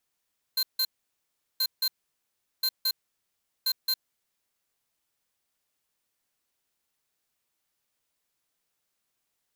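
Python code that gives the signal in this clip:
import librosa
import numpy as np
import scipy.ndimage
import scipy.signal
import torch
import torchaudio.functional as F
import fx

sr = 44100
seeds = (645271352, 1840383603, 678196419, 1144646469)

y = fx.beep_pattern(sr, wave='square', hz=4150.0, on_s=0.06, off_s=0.16, beeps=2, pause_s=0.75, groups=4, level_db=-25.5)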